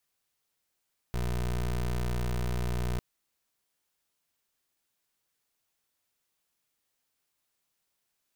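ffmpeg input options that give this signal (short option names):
-f lavfi -i "aevalsrc='0.0316*(2*lt(mod(60.7*t,1),0.22)-1)':d=1.85:s=44100"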